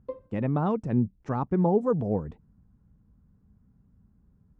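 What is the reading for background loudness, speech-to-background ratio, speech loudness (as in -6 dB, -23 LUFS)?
-43.5 LUFS, 16.5 dB, -27.0 LUFS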